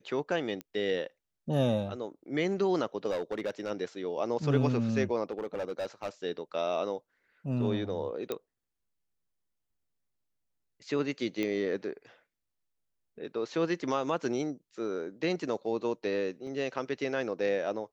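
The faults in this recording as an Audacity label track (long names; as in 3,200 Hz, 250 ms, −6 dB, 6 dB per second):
0.610000	0.610000	click −24 dBFS
3.100000	3.710000	clipping −28 dBFS
5.300000	6.090000	clipping −29.5 dBFS
8.320000	8.320000	click −19 dBFS
11.430000	11.430000	click −20 dBFS
16.470000	16.470000	drop-out 3.8 ms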